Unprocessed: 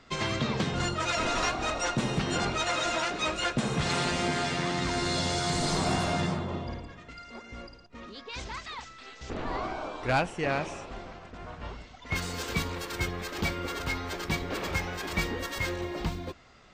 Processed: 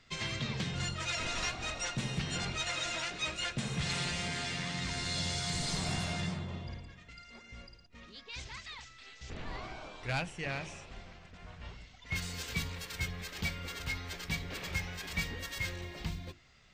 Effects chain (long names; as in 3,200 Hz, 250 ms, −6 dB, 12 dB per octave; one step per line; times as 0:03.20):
flat-topped bell 580 Hz −8.5 dB 2.9 octaves
mains-hum notches 50/100/150/200/250/300/350 Hz
level −3.5 dB